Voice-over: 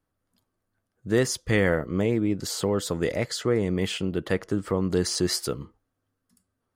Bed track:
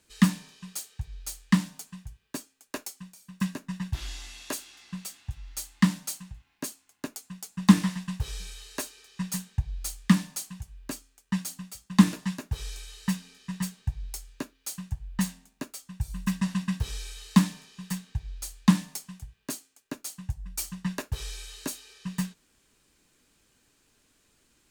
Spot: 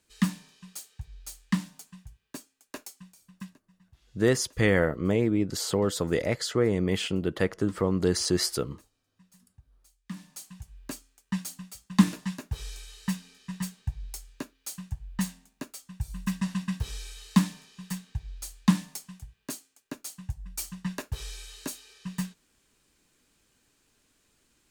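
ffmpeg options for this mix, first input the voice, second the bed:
ffmpeg -i stem1.wav -i stem2.wav -filter_complex "[0:a]adelay=3100,volume=-0.5dB[link_01];[1:a]volume=21dB,afade=type=out:start_time=3.14:duration=0.45:silence=0.0707946,afade=type=in:start_time=10.05:duration=0.71:silence=0.0501187[link_02];[link_01][link_02]amix=inputs=2:normalize=0" out.wav

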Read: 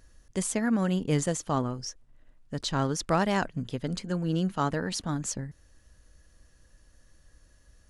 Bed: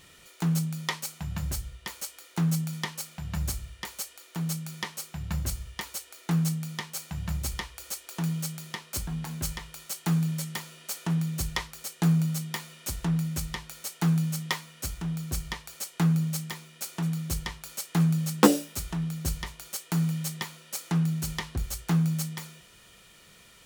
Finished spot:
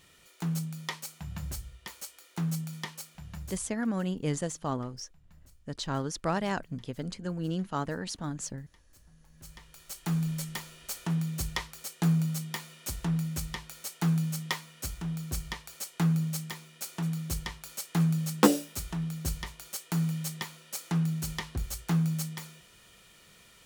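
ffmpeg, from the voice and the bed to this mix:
ffmpeg -i stem1.wav -i stem2.wav -filter_complex "[0:a]adelay=3150,volume=-4.5dB[link_01];[1:a]volume=20.5dB,afade=type=out:start_time=2.91:duration=0.98:silence=0.0707946,afade=type=in:start_time=9.32:duration=0.99:silence=0.0501187[link_02];[link_01][link_02]amix=inputs=2:normalize=0" out.wav

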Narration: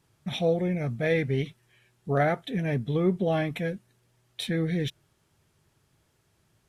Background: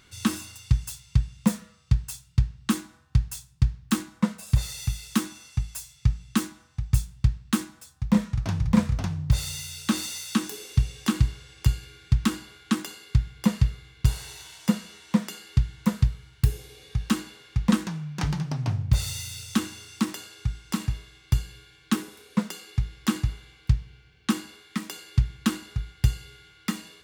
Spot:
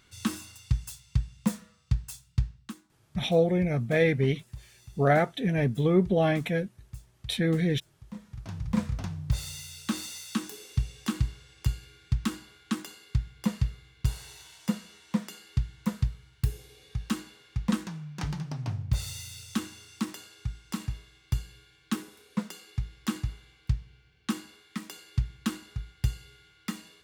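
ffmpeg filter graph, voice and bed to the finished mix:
ffmpeg -i stem1.wav -i stem2.wav -filter_complex "[0:a]adelay=2900,volume=2dB[link_01];[1:a]volume=10.5dB,afade=type=out:start_time=2.47:duration=0.27:silence=0.149624,afade=type=in:start_time=8.2:duration=0.67:silence=0.16788[link_02];[link_01][link_02]amix=inputs=2:normalize=0" out.wav

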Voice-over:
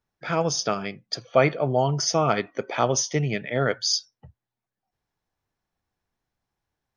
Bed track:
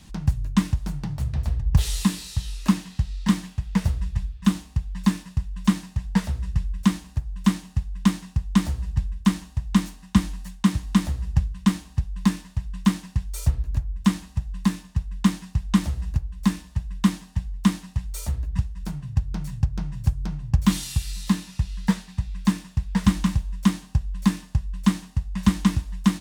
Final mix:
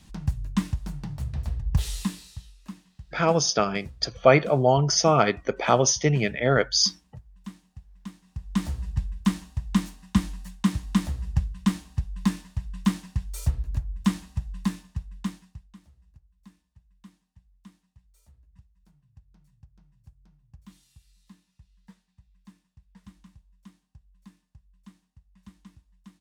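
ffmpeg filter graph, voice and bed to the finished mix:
ffmpeg -i stem1.wav -i stem2.wav -filter_complex "[0:a]adelay=2900,volume=2.5dB[link_01];[1:a]volume=12dB,afade=type=out:start_time=1.87:duration=0.67:silence=0.16788,afade=type=in:start_time=8.23:duration=0.51:silence=0.141254,afade=type=out:start_time=14.46:duration=1.26:silence=0.0446684[link_02];[link_01][link_02]amix=inputs=2:normalize=0" out.wav

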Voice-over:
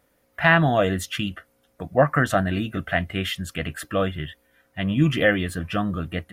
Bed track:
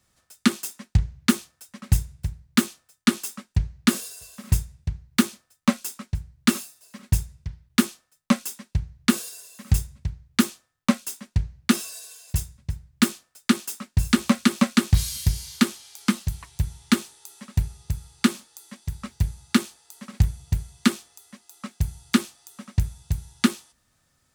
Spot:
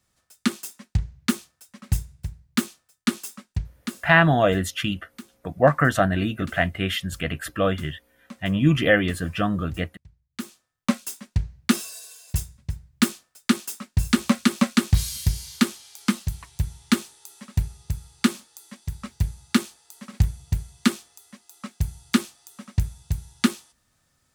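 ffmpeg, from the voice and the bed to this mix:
ffmpeg -i stem1.wav -i stem2.wav -filter_complex "[0:a]adelay=3650,volume=1dB[link_01];[1:a]volume=18dB,afade=type=out:start_time=3.47:duration=0.58:silence=0.11885,afade=type=in:start_time=10.3:duration=0.72:silence=0.0841395[link_02];[link_01][link_02]amix=inputs=2:normalize=0" out.wav

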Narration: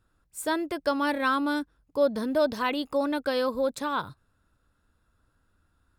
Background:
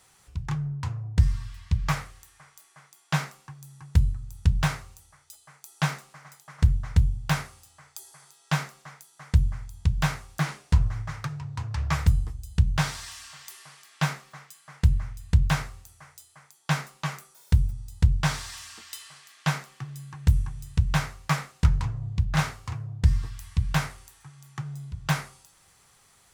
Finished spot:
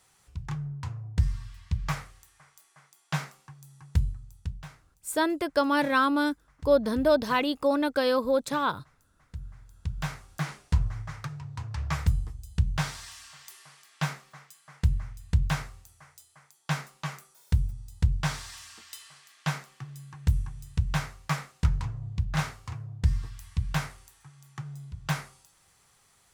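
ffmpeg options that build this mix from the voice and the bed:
ffmpeg -i stem1.wav -i stem2.wav -filter_complex "[0:a]adelay=4700,volume=2dB[link_01];[1:a]volume=11.5dB,afade=type=out:start_time=3.98:duration=0.65:silence=0.16788,afade=type=in:start_time=9.36:duration=1.18:silence=0.158489[link_02];[link_01][link_02]amix=inputs=2:normalize=0" out.wav

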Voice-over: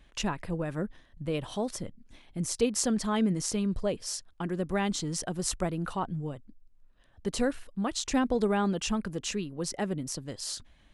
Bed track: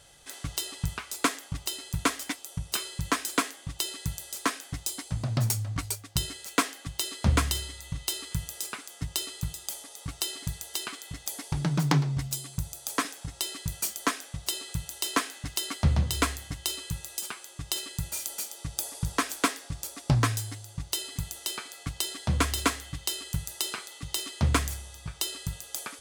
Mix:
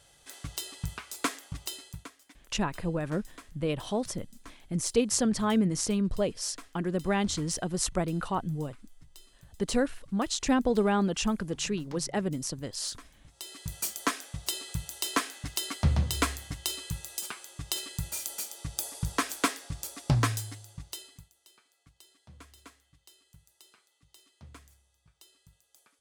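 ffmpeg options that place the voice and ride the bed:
ffmpeg -i stem1.wav -i stem2.wav -filter_complex "[0:a]adelay=2350,volume=1.5dB[link_01];[1:a]volume=17.5dB,afade=type=out:start_time=1.74:duration=0.34:silence=0.112202,afade=type=in:start_time=13.24:duration=0.65:silence=0.0794328,afade=type=out:start_time=20.27:duration=1.02:silence=0.0562341[link_02];[link_01][link_02]amix=inputs=2:normalize=0" out.wav

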